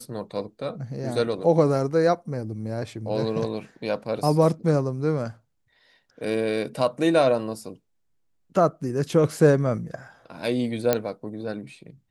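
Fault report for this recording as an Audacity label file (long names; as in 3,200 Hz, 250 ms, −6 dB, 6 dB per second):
10.930000	10.930000	click −6 dBFS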